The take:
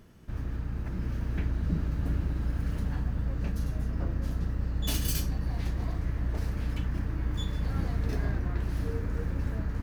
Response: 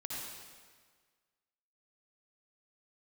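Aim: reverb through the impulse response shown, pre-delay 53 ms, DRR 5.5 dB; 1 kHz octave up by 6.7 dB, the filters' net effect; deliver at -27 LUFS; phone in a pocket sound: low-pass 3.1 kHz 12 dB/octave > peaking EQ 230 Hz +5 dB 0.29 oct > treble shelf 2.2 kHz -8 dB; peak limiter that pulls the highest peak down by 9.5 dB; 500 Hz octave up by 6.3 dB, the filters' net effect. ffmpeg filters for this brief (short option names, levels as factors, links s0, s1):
-filter_complex "[0:a]equalizer=f=500:t=o:g=6,equalizer=f=1000:t=o:g=8.5,alimiter=limit=0.075:level=0:latency=1,asplit=2[s0][s1];[1:a]atrim=start_sample=2205,adelay=53[s2];[s1][s2]afir=irnorm=-1:irlink=0,volume=0.501[s3];[s0][s3]amix=inputs=2:normalize=0,lowpass=3100,equalizer=f=230:t=o:w=0.29:g=5,highshelf=f=2200:g=-8,volume=1.78"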